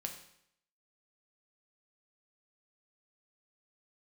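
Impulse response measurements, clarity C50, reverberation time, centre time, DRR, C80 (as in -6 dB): 8.5 dB, 0.70 s, 18 ms, 3.0 dB, 11.0 dB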